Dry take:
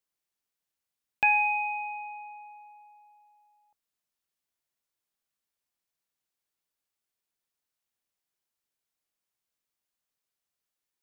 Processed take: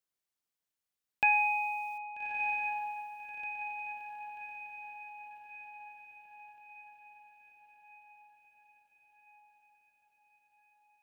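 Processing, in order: 1.32–1.98 requantised 10-bit, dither none; diffused feedback echo 1.27 s, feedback 55%, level -6 dB; gain -3 dB

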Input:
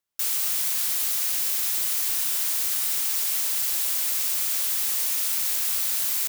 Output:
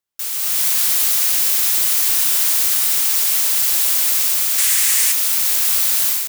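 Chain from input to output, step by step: 4.58–5.12 graphic EQ 125/500/2000/8000 Hz -5/-6/+9/+7 dB; AGC gain up to 10 dB

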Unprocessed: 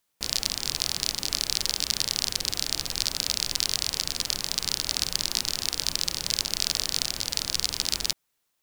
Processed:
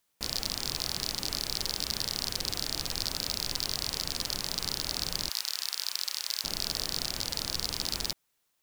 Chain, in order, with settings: 5.29–6.44 HPF 1200 Hz 12 dB/oct; soft clip -14.5 dBFS, distortion -7 dB

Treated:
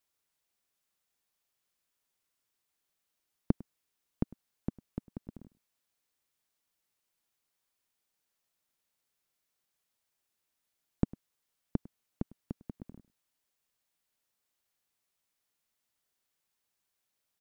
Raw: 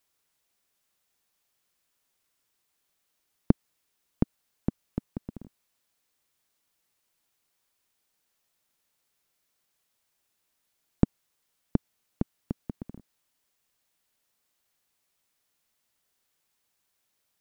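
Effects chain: echo 0.102 s -21 dB; gain -6.5 dB

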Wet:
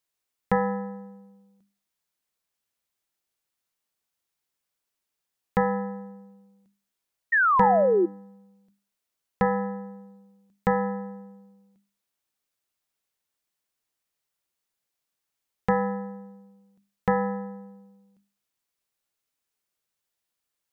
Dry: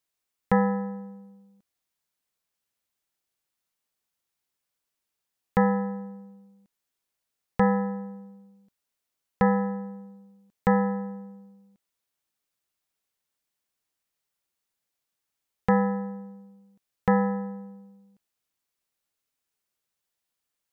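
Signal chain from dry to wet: painted sound fall, 7.32–8.06, 330–1900 Hz -20 dBFS; notches 50/100/150/200/250/300 Hz

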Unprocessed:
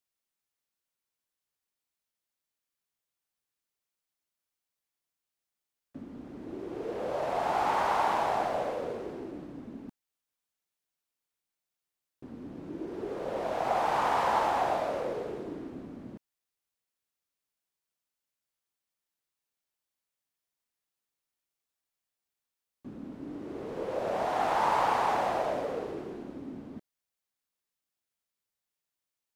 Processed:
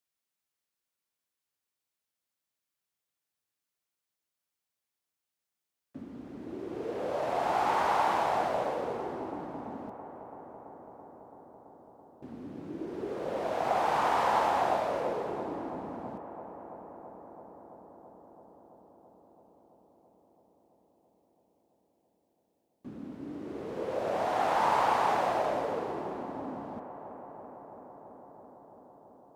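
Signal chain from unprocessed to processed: HPF 60 Hz; on a send: darkening echo 0.333 s, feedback 84%, low-pass 2400 Hz, level -13.5 dB

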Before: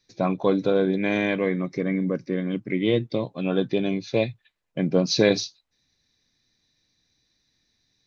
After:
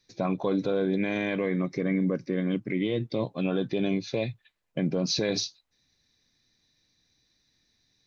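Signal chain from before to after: limiter -17.5 dBFS, peak gain reduction 11 dB

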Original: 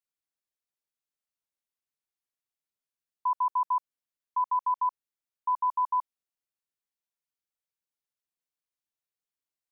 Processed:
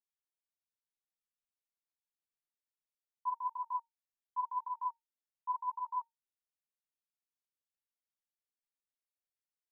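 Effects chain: resonator 910 Hz, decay 0.16 s, mix 60%; ensemble effect

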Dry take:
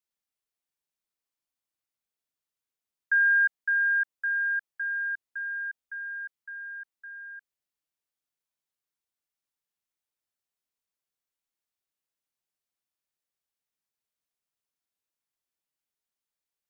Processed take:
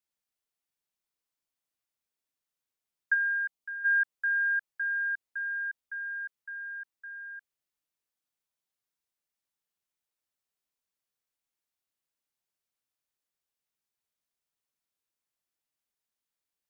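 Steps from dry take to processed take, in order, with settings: 3.13–3.84 bell 1600 Hz -5.5 dB -> -14 dB 0.57 oct

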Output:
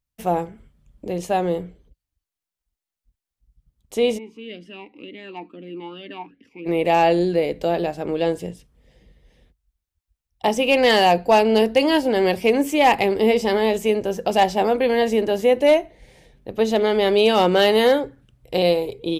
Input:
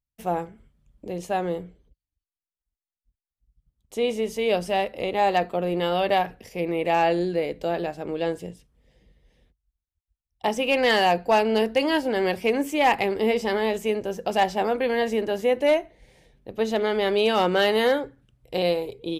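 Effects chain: dynamic EQ 1500 Hz, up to -5 dB, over -39 dBFS, Q 1.4; 4.17–6.65 vowel sweep i-u 1.3 Hz -> 3.4 Hz; gain +5.5 dB

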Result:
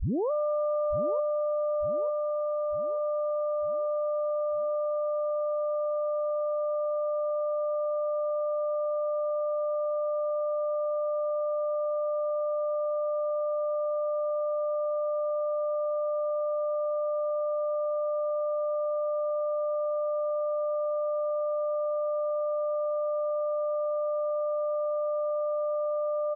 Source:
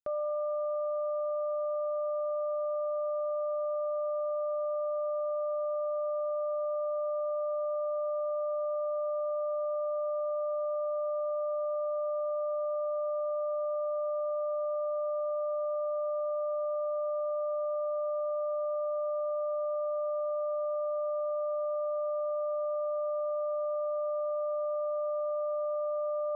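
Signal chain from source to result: tape start at the beginning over 0.31 s; on a send: feedback echo 0.9 s, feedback 50%, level -10 dB; on the sum: gain +4.5 dB

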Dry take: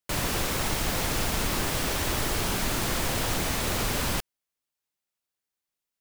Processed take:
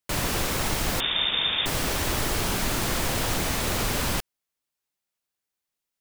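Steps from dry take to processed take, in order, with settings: 1–1.66 inverted band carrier 3600 Hz; gain +1.5 dB

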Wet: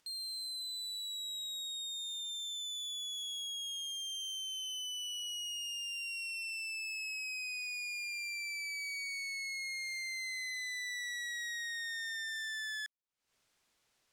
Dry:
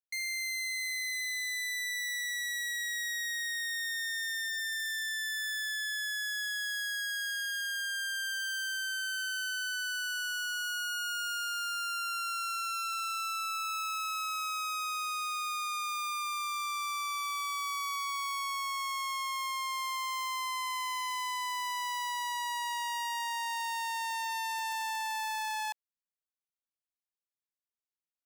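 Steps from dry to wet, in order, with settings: LPF 3600 Hz 12 dB/oct; upward compressor, threshold -48 dBFS; speed mistake 7.5 ips tape played at 15 ips; gain -4.5 dB

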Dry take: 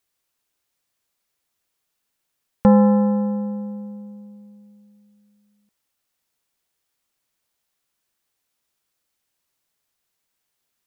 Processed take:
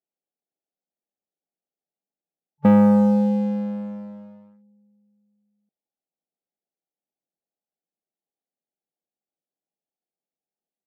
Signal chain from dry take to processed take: FFT band-pass 140–870 Hz; sample leveller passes 2; gain -4.5 dB

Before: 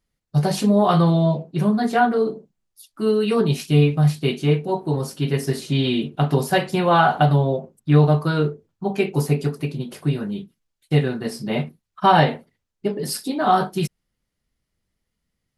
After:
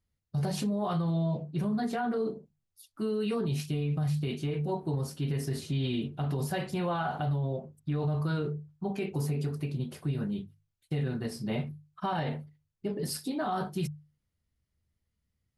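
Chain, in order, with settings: bell 87 Hz +14.5 dB 1.2 oct; notches 50/100/150 Hz; limiter -15 dBFS, peak gain reduction 12 dB; gain -8.5 dB

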